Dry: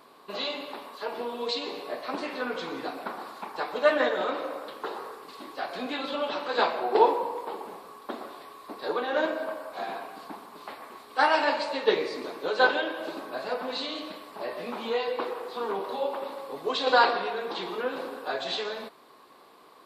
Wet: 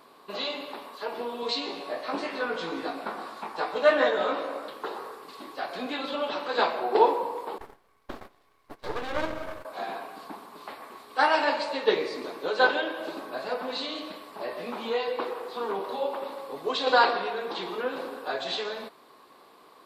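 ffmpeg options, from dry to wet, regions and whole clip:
-filter_complex "[0:a]asettb=1/sr,asplit=3[a][b][c];[a]atrim=end=1.414[d];[b]atrim=start=1.41:end=4.68,asetpts=PTS-STARTPTS,afade=t=in:d=0.004:c=qsin,afade=t=out:st=3.266:d=0.004:c=qsin,lowpass=11k,asplit=2[e][f];[f]adelay=18,volume=-4dB[g];[e][g]amix=inputs=2:normalize=0,atrim=end_sample=144207[h];[c]atrim=start=4.676[i];[d][h]acrossfade=d=0.004:c1=hsin:c2=qsin[j];[j][i]acrossfade=d=0.004:c1=qsin:c2=hsin,asettb=1/sr,asplit=3[k][l][m];[k]atrim=end=7.584[n];[l]atrim=start=7.58:end=9.65,asetpts=PTS-STARTPTS,afade=t=in:d=0.004:c=qsin,afade=t=out:st=2.066:d=0.004:c=qsin,lowshelf=f=110:g=8.5,aeval=exprs='max(val(0),0)':c=same,agate=range=-16dB:threshold=-43dB:ratio=16:release=100:detection=peak[o];[m]atrim=start=9.646[p];[n][o]acrossfade=d=0.004:c1=hsin:c2=qsin[q];[q][p]acrossfade=d=0.004:c1=qsin:c2=hsin"

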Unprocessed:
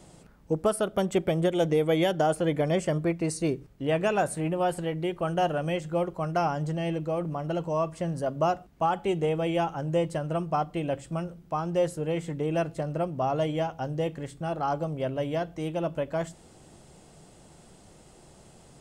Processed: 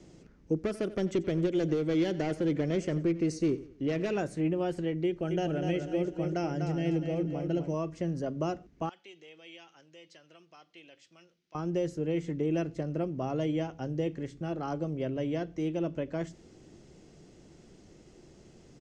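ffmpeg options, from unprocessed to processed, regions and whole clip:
-filter_complex "[0:a]asettb=1/sr,asplit=3[a][b][c];[a]atrim=end=0.584[d];[b]atrim=start=0.58:end=4.17,asetpts=PTS-STARTPTS,afade=t=in:d=0.004:c=qsin,afade=t=out:st=3.586:d=0.004:c=qsin,asoftclip=type=hard:threshold=-22.5dB,aecho=1:1:90|180|270:0.126|0.0491|0.0191,atrim=end_sample=158319[e];[c]atrim=start=4.166[f];[d][e]acrossfade=d=0.004:c1=hsin:c2=qsin[g];[g][f]acrossfade=d=0.004:c1=qsin:c2=hsin,asettb=1/sr,asplit=3[h][i][j];[h]atrim=end=5.064[k];[i]atrim=start=5.06:end=7.74,asetpts=PTS-STARTPTS,afade=t=in:d=0.004:c=qsin,afade=t=out:st=2.676:d=0.004:c=qsin,equalizer=f=1.1k:w=5.3:g=-13.5,aecho=1:1:247|494|741|988:0.473|0.166|0.058|0.0203,atrim=end_sample=118188[l];[j]atrim=start=7.736[m];[k][l]acrossfade=d=0.004:c1=hsin:c2=qsin[n];[n][m]acrossfade=d=0.004:c1=qsin:c2=hsin,asettb=1/sr,asplit=3[o][p][q];[o]atrim=end=8.894[r];[p]atrim=start=8.89:end=11.55,asetpts=PTS-STARTPTS,afade=t=in:d=0.004:c=qsin,afade=t=out:st=2.656:d=0.004:c=qsin,acompressor=threshold=-28dB:ratio=2.5:attack=3.2:release=140:knee=1:detection=peak,bandpass=f=3.9k:t=q:w=1.4[s];[q]atrim=start=11.546[t];[r][s]acrossfade=d=0.004:c1=hsin:c2=qsin[u];[u][t]acrossfade=d=0.004:c1=qsin:c2=hsin,firequalizer=gain_entry='entry(160,0);entry(330,6);entry(590,-4);entry(840,-8);entry(1300,-5);entry(2000,0);entry(3600,-4);entry(6100,1);entry(8700,-16);entry(13000,-21)':delay=0.05:min_phase=1,acrossover=split=320|3000[v][w][x];[w]acompressor=threshold=-27dB:ratio=6[y];[v][y][x]amix=inputs=3:normalize=0,volume=-2.5dB"

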